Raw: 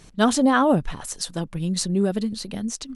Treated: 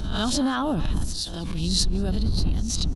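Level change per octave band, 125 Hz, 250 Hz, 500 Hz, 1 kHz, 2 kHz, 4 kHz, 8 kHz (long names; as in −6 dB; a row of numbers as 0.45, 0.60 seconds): +2.5, −5.0, −9.0, −7.5, −7.5, +4.0, −1.0 decibels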